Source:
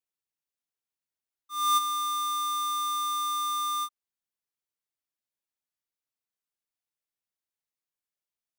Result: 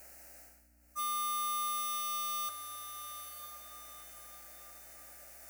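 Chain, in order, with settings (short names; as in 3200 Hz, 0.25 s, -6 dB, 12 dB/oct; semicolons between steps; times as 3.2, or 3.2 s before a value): reverse; upward compressor, threshold -29 dBFS; reverse; limiter -32.5 dBFS, peak gain reduction 11.5 dB; time stretch by phase-locked vocoder 0.64×; resonant high-pass 500 Hz, resonance Q 4; hum 60 Hz, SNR 33 dB; fixed phaser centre 700 Hz, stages 8; wavefolder -36.5 dBFS; diffused feedback echo 0.948 s, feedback 41%, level -9 dB; gain +5.5 dB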